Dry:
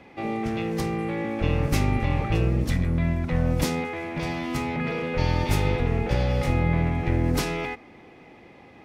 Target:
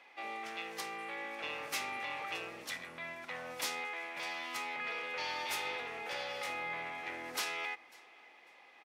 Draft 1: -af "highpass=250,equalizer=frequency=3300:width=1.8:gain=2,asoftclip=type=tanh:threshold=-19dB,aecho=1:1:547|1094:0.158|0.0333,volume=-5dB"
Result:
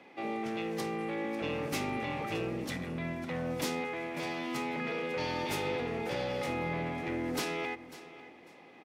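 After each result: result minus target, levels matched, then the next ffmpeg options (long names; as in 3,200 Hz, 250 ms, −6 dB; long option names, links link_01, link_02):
250 Hz band +14.0 dB; echo-to-direct +8.5 dB
-af "highpass=930,equalizer=frequency=3300:width=1.8:gain=2,asoftclip=type=tanh:threshold=-19dB,aecho=1:1:547|1094:0.158|0.0333,volume=-5dB"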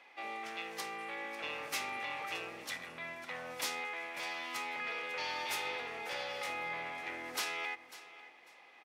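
echo-to-direct +8.5 dB
-af "highpass=930,equalizer=frequency=3300:width=1.8:gain=2,asoftclip=type=tanh:threshold=-19dB,aecho=1:1:547|1094:0.0596|0.0125,volume=-5dB"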